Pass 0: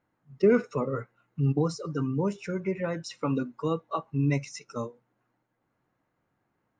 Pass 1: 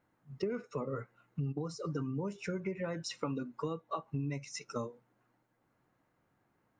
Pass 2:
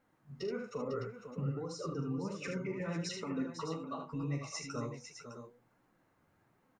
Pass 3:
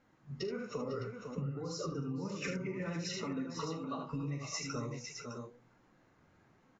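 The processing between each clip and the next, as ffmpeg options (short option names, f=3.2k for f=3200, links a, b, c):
-af "acompressor=threshold=-34dB:ratio=10,volume=1dB"
-af "alimiter=level_in=7.5dB:limit=-24dB:level=0:latency=1:release=234,volume=-7.5dB,flanger=delay=3.7:depth=9.1:regen=30:speed=1.2:shape=sinusoidal,aecho=1:1:42|76|501|609:0.355|0.501|0.335|0.316,volume=5dB"
-af "equalizer=f=750:w=0.56:g=-3.5,acompressor=threshold=-41dB:ratio=6,volume=6dB" -ar 16000 -c:a aac -b:a 24k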